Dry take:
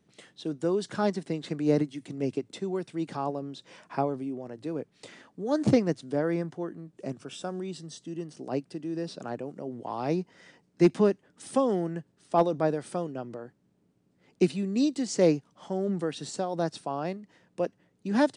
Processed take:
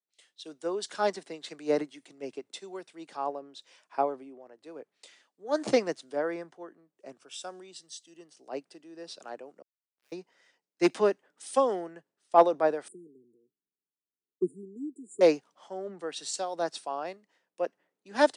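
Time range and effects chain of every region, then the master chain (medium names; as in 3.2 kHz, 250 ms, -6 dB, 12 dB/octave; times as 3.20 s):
9.62–10.12 s: steep high-pass 1.5 kHz 96 dB/octave + Schmitt trigger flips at -44 dBFS
12.88–15.21 s: brick-wall FIR band-stop 460–6800 Hz + peaking EQ 6.9 kHz -12.5 dB 0.59 oct
whole clip: high-pass 500 Hz 12 dB/octave; three bands expanded up and down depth 70%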